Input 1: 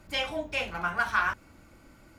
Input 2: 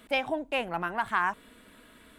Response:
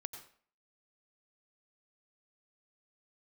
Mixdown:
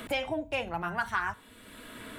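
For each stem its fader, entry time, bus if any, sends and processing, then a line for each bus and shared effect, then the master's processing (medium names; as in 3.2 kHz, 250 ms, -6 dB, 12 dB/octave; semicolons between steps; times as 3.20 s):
0.0 dB, 0.00 s, no send, expander on every frequency bin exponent 2; peaking EQ 110 Hz +10.5 dB 1 oct; feedback comb 58 Hz, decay 0.3 s, mix 50%
-5.0 dB, 0.00 s, polarity flipped, send -21.5 dB, none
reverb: on, RT60 0.50 s, pre-delay 83 ms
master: three bands compressed up and down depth 70%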